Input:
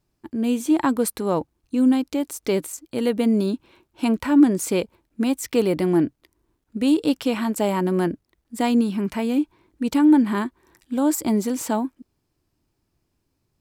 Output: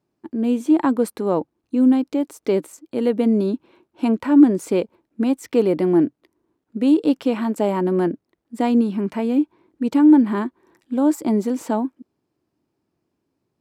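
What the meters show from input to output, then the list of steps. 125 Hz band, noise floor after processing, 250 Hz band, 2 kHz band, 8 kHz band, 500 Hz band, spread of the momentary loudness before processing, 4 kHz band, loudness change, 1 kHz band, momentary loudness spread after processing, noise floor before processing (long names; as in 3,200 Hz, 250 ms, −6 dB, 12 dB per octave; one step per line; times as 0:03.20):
0.0 dB, −77 dBFS, +2.5 dB, −3.0 dB, can't be measured, +3.0 dB, 11 LU, −5.5 dB, +2.5 dB, +0.5 dB, 11 LU, −74 dBFS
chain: high-pass filter 270 Hz 12 dB per octave
spectral tilt −3 dB per octave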